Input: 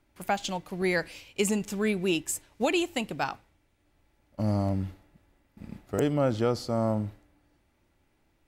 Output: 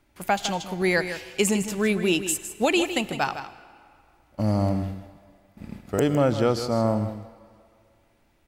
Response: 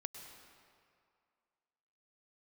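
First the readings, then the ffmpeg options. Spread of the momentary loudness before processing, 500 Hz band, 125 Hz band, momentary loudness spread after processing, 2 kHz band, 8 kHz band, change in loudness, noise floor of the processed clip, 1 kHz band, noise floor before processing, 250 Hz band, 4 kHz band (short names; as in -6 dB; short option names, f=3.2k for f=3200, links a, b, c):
12 LU, +4.5 dB, +4.0 dB, 14 LU, +5.5 dB, +5.5 dB, +4.5 dB, -64 dBFS, +5.0 dB, -70 dBFS, +4.0 dB, +5.5 dB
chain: -filter_complex "[0:a]aecho=1:1:158:0.299,asplit=2[a][b];[1:a]atrim=start_sample=2205,lowshelf=f=440:g=-9.5[c];[b][c]afir=irnorm=-1:irlink=0,volume=-4.5dB[d];[a][d]amix=inputs=2:normalize=0,volume=2.5dB"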